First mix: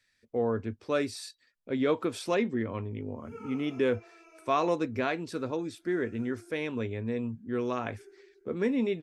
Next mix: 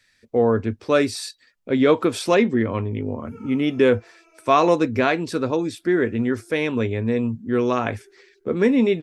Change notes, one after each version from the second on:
speech +10.5 dB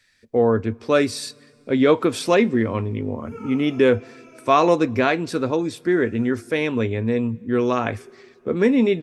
background +7.0 dB; reverb: on, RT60 2.6 s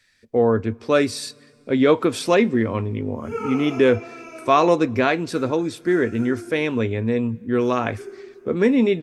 background +10.0 dB

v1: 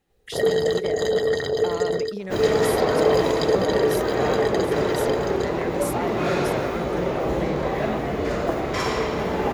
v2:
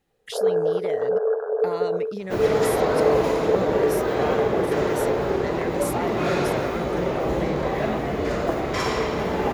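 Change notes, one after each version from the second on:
first sound: add brick-wall FIR band-pass 400–1700 Hz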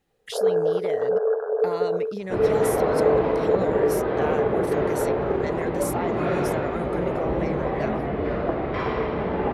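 second sound: add air absorption 410 m

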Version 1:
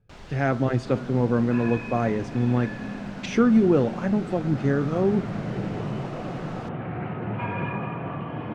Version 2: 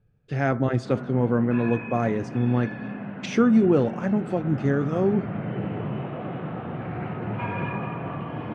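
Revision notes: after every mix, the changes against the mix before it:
first sound: muted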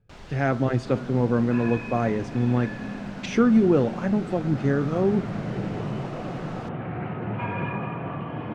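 first sound: unmuted

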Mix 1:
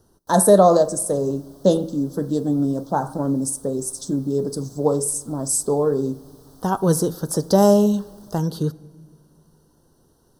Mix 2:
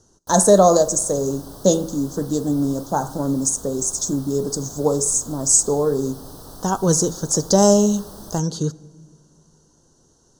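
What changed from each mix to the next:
speech: add synth low-pass 6800 Hz, resonance Q 9; background +12.0 dB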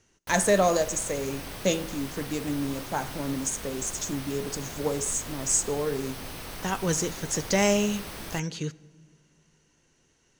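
speech -9.5 dB; master: remove Butterworth band-stop 2300 Hz, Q 0.72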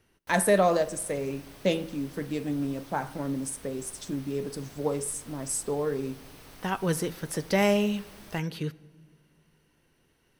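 speech: remove synth low-pass 6800 Hz, resonance Q 9; background -11.0 dB

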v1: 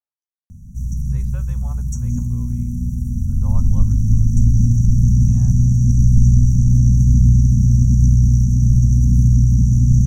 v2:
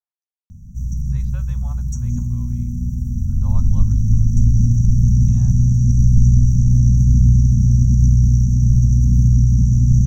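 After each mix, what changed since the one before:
master: add fifteen-band EQ 400 Hz -11 dB, 4000 Hz +7 dB, 10000 Hz -12 dB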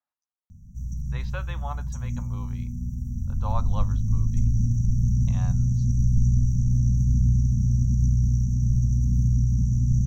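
speech +10.0 dB; background -8.5 dB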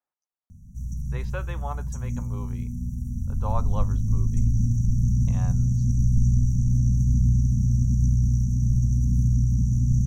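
master: add fifteen-band EQ 400 Hz +11 dB, 4000 Hz -7 dB, 10000 Hz +12 dB

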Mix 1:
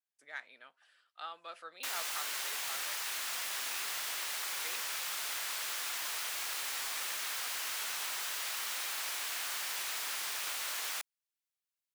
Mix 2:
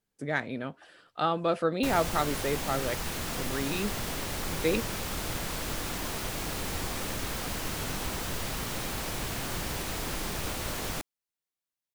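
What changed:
speech +10.5 dB; master: remove HPF 1300 Hz 12 dB/oct

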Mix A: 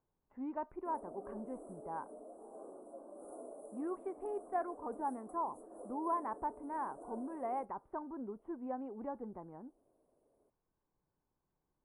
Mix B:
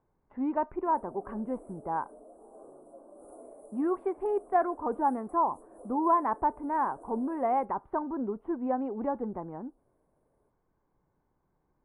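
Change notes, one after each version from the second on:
speech +11.0 dB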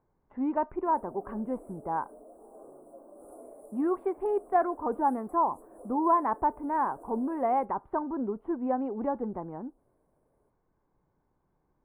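master: remove Chebyshev low-pass 11000 Hz, order 10

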